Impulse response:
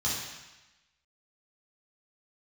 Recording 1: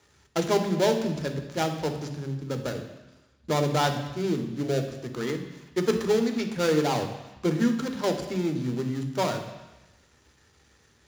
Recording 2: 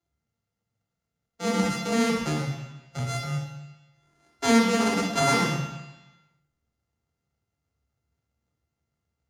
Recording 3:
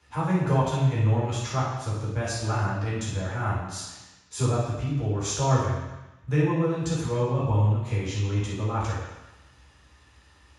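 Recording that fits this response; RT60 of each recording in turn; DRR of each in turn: 3; 1.0 s, 1.0 s, 1.0 s; 5.0 dB, 0.5 dB, -8.0 dB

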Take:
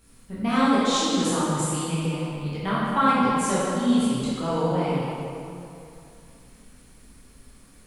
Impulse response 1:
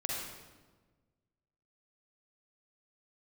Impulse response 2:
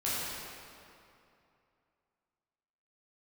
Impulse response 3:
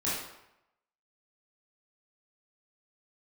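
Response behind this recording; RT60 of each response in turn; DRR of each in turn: 2; 1.4 s, 2.7 s, 0.85 s; -3.5 dB, -9.5 dB, -9.5 dB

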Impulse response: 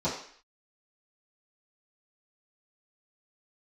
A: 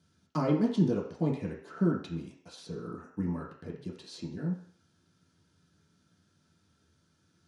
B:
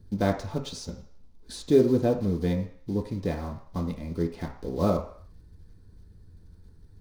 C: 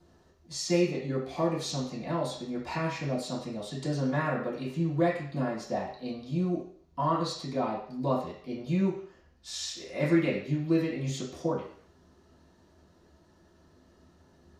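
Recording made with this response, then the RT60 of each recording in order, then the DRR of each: C; 0.55 s, 0.55 s, 0.55 s; -5.0 dB, 1.0 dB, -13.0 dB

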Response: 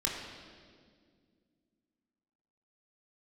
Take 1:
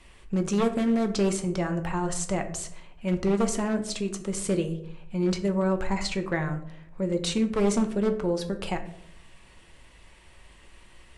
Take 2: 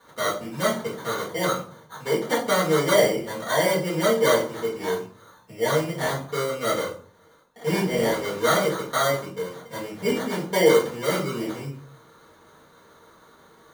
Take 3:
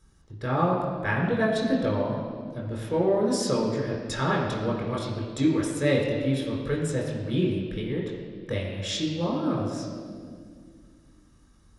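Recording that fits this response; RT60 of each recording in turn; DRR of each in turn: 3; 0.75 s, 0.45 s, 2.0 s; 5.5 dB, -8.0 dB, -3.0 dB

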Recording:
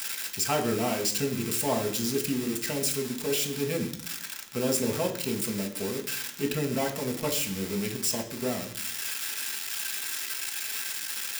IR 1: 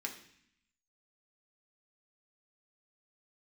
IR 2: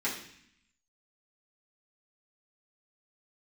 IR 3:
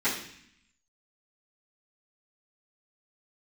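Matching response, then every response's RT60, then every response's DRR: 1; 0.60 s, 0.60 s, 0.60 s; 0.5 dB, -9.0 dB, -15.5 dB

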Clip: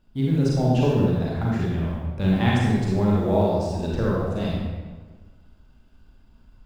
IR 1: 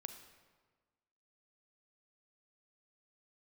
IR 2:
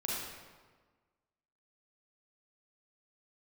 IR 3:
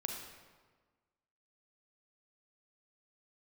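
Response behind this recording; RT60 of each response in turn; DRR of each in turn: 2; 1.4 s, 1.4 s, 1.4 s; 7.5 dB, -5.5 dB, 1.5 dB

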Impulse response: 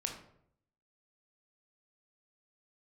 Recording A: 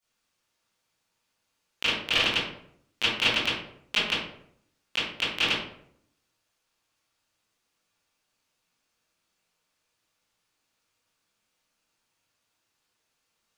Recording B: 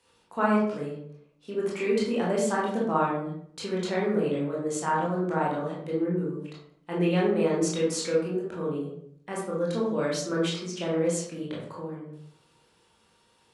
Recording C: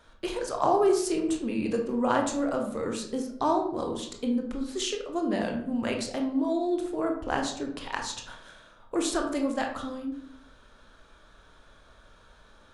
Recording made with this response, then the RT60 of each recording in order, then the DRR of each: C; 0.65 s, 0.70 s, 0.70 s; -14.0 dB, -5.5 dB, 2.0 dB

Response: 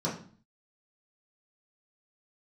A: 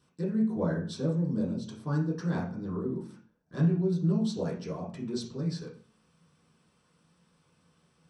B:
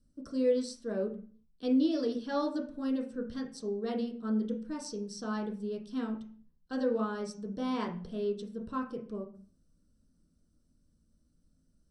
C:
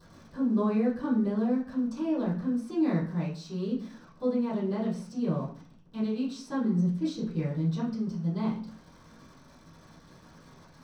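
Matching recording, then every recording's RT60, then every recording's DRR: A; 0.45 s, 0.45 s, 0.45 s; -7.5 dB, -0.5 dB, -14.0 dB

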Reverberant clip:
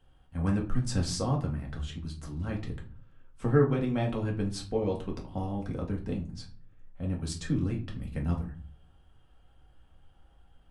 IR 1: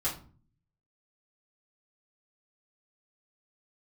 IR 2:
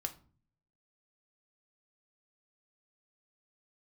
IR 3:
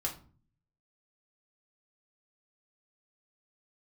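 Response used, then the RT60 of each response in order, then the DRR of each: 3; 0.40 s, 0.45 s, 0.40 s; -8.0 dB, 6.0 dB, -1.0 dB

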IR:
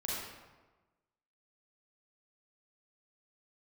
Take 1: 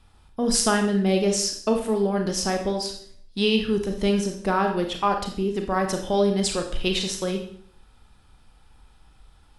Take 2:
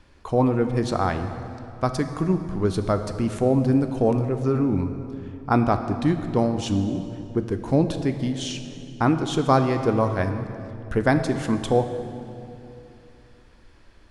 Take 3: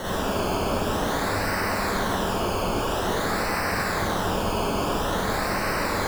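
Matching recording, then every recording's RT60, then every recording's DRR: 3; 0.55 s, 2.8 s, 1.2 s; 4.0 dB, 7.5 dB, -6.5 dB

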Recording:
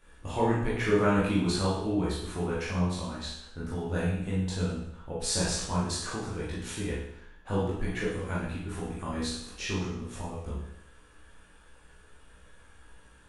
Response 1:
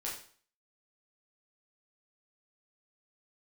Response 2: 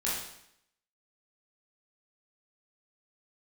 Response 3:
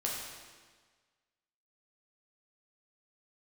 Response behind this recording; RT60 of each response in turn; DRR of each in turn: 2; 0.45 s, 0.75 s, 1.5 s; -5.0 dB, -8.0 dB, -4.0 dB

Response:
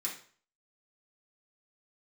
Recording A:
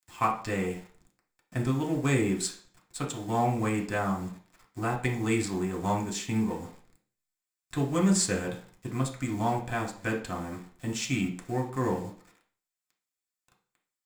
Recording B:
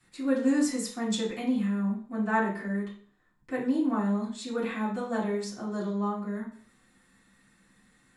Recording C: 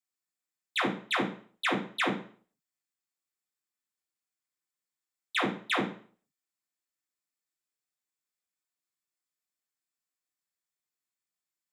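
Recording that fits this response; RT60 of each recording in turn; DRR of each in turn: C; 0.45 s, 0.45 s, 0.45 s; -1.0 dB, -10.0 dB, -5.5 dB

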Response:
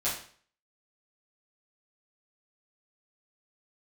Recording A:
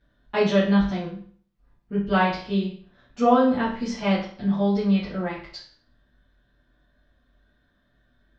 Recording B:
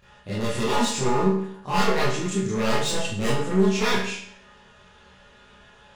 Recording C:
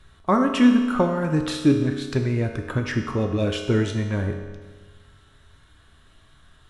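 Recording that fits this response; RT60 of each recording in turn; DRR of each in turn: A; 0.50 s, 0.65 s, 1.4 s; -11.0 dB, -12.0 dB, 3.0 dB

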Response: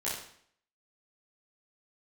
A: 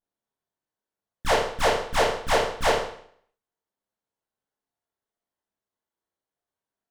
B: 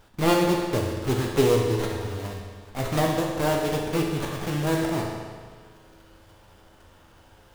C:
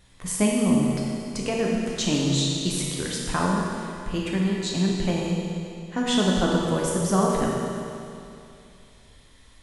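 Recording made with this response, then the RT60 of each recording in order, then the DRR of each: A; 0.60 s, 1.7 s, 2.6 s; -9.0 dB, -1.0 dB, -3.0 dB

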